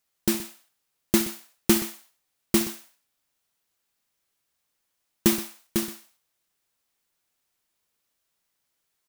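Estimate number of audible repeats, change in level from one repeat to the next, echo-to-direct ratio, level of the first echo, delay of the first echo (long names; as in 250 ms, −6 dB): 2, repeats not evenly spaced, −13.0 dB, −18.0 dB, 68 ms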